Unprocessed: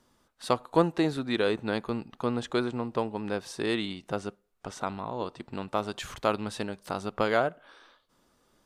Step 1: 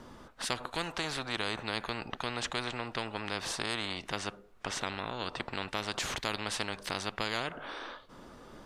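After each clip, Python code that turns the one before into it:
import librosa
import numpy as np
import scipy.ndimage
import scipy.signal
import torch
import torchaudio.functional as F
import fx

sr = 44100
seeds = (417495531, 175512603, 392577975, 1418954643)

y = fx.lowpass(x, sr, hz=2100.0, slope=6)
y = fx.spectral_comp(y, sr, ratio=4.0)
y = y * librosa.db_to_amplitude(-5.0)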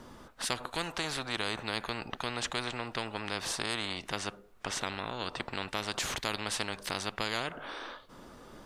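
y = fx.high_shelf(x, sr, hz=9200.0, db=7.0)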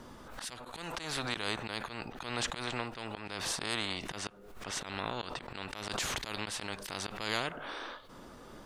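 y = fx.auto_swell(x, sr, attack_ms=148.0)
y = fx.pre_swell(y, sr, db_per_s=53.0)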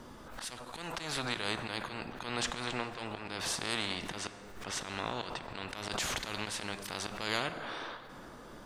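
y = fx.rev_plate(x, sr, seeds[0], rt60_s=3.8, hf_ratio=0.45, predelay_ms=0, drr_db=10.0)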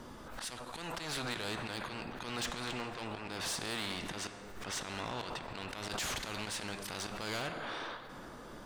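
y = 10.0 ** (-32.5 / 20.0) * np.tanh(x / 10.0 ** (-32.5 / 20.0))
y = y * librosa.db_to_amplitude(1.0)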